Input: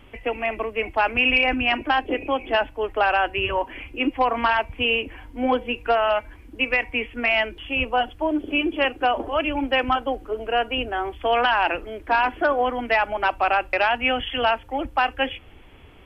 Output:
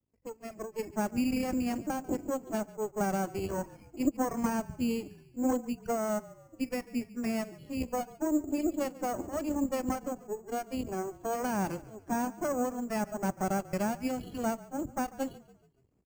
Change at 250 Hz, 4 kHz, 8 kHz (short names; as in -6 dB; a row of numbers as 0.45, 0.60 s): -1.5 dB, -22.5 dB, n/a